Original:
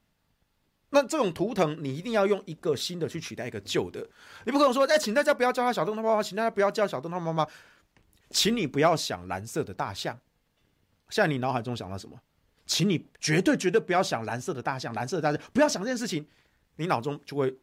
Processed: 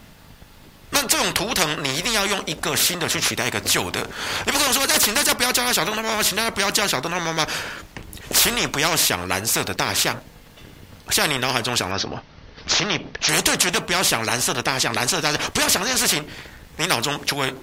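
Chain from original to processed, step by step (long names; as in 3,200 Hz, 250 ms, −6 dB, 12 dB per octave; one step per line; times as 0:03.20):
0:11.91–0:13.29: Chebyshev low-pass filter 5,900 Hz, order 6
every bin compressed towards the loudest bin 4 to 1
level +8.5 dB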